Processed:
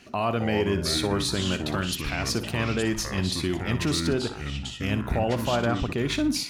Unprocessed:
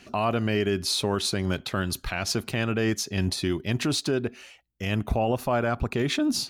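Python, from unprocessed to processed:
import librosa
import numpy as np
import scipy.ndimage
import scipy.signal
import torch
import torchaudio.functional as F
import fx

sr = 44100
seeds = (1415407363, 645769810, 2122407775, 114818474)

y = fx.echo_pitch(x, sr, ms=219, semitones=-5, count=2, db_per_echo=-6.0)
y = fx.room_flutter(y, sr, wall_m=10.3, rt60_s=0.31)
y = F.gain(torch.from_numpy(y), -1.0).numpy()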